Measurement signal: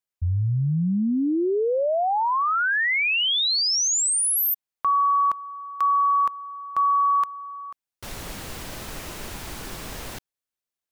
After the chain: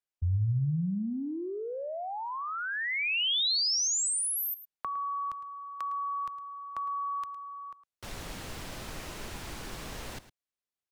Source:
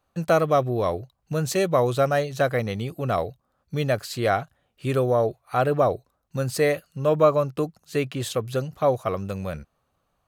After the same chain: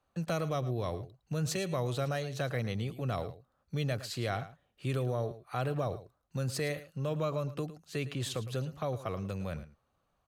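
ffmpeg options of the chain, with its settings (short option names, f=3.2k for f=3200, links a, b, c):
-filter_complex "[0:a]highshelf=f=11k:g=-9.5,acrossover=split=170|2500[a][b][c];[b]acompressor=threshold=-43dB:ratio=2:attack=27:release=21:knee=2.83:detection=peak[d];[a][d][c]amix=inputs=3:normalize=0,aecho=1:1:109:0.178,volume=-4.5dB"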